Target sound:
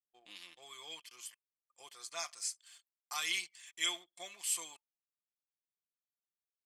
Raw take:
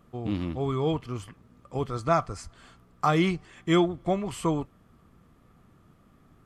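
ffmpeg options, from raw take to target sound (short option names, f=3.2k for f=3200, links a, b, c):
-af "atempo=0.97,highpass=f=950:p=1,aderivative,bandreject=f=1.3k:w=5.4,aecho=1:1:5.7:0.5,aecho=1:1:70|140|210:0.075|0.0277|0.0103,anlmdn=0.00001,adynamicequalizer=threshold=0.00141:dfrequency=1700:dqfactor=0.7:tfrequency=1700:tqfactor=0.7:attack=5:release=100:ratio=0.375:range=4:mode=boostabove:tftype=highshelf"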